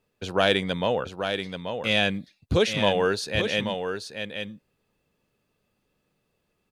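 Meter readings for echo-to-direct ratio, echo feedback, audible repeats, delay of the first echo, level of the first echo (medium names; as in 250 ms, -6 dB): -7.0 dB, no regular repeats, 1, 833 ms, -7.0 dB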